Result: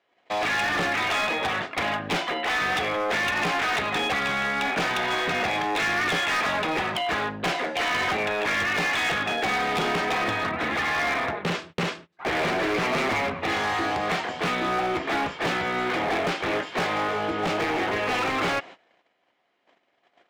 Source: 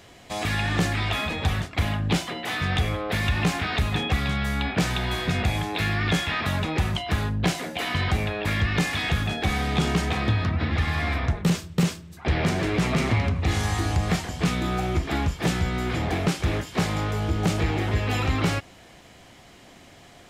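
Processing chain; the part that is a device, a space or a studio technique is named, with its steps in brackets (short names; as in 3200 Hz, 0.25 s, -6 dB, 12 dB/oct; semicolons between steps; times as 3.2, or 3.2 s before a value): walkie-talkie (BPF 420–2800 Hz; hard clip -29 dBFS, distortion -11 dB; gate -49 dBFS, range -26 dB); gain +7.5 dB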